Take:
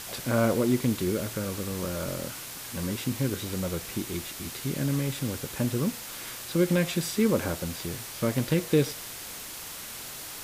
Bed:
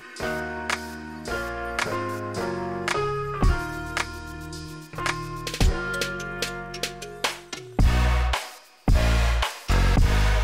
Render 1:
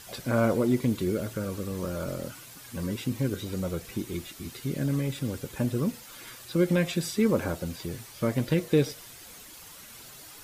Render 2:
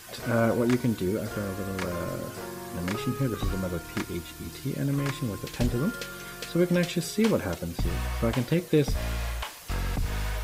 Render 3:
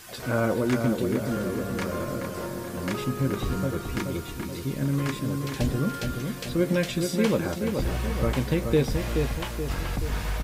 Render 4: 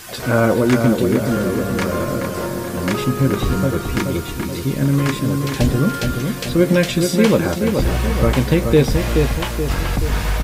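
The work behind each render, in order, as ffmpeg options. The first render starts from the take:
-af "afftdn=nr=10:nf=-40"
-filter_complex "[1:a]volume=-10dB[a];[0:a][a]amix=inputs=2:normalize=0"
-filter_complex "[0:a]asplit=2[a][b];[b]adelay=15,volume=-11dB[c];[a][c]amix=inputs=2:normalize=0,asplit=2[d][e];[e]adelay=427,lowpass=f=2.2k:p=1,volume=-5dB,asplit=2[f][g];[g]adelay=427,lowpass=f=2.2k:p=1,volume=0.52,asplit=2[h][i];[i]adelay=427,lowpass=f=2.2k:p=1,volume=0.52,asplit=2[j][k];[k]adelay=427,lowpass=f=2.2k:p=1,volume=0.52,asplit=2[l][m];[m]adelay=427,lowpass=f=2.2k:p=1,volume=0.52,asplit=2[n][o];[o]adelay=427,lowpass=f=2.2k:p=1,volume=0.52,asplit=2[p][q];[q]adelay=427,lowpass=f=2.2k:p=1,volume=0.52[r];[d][f][h][j][l][n][p][r]amix=inputs=8:normalize=0"
-af "volume=9.5dB,alimiter=limit=-2dB:level=0:latency=1"

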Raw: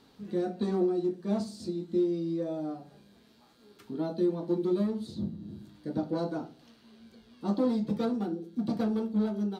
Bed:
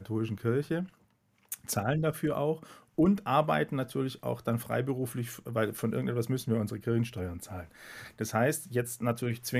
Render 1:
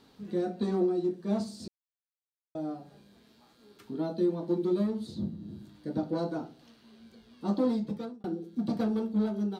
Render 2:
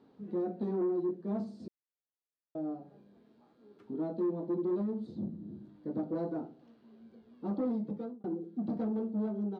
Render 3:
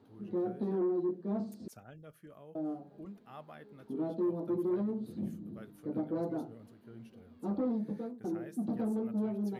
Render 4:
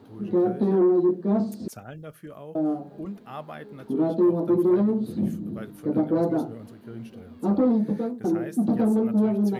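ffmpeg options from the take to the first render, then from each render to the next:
-filter_complex "[0:a]asplit=4[a][b][c][d];[a]atrim=end=1.68,asetpts=PTS-STARTPTS,afade=t=out:st=1.676:d=0.004:c=hsin[e];[b]atrim=start=1.68:end=2.55,asetpts=PTS-STARTPTS,volume=0[f];[c]atrim=start=2.55:end=8.24,asetpts=PTS-STARTPTS,afade=t=in:d=0.004:c=hsin,afade=t=out:st=5.16:d=0.53[g];[d]atrim=start=8.24,asetpts=PTS-STARTPTS,afade=t=in:d=0.004:c=hsin[h];[e][f][g][h]concat=n=4:v=0:a=1"
-af "asoftclip=type=tanh:threshold=-26.5dB,bandpass=f=350:t=q:w=0.64:csg=0"
-filter_complex "[1:a]volume=-23.5dB[a];[0:a][a]amix=inputs=2:normalize=0"
-af "volume=12dB"

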